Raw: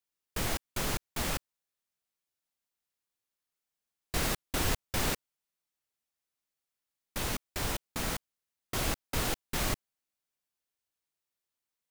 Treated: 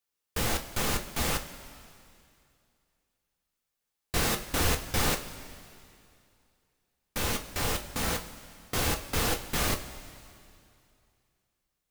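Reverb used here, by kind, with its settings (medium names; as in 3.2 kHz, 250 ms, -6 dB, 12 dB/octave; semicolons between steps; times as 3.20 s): two-slope reverb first 0.25 s, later 2.5 s, from -16 dB, DRR 3 dB; trim +2.5 dB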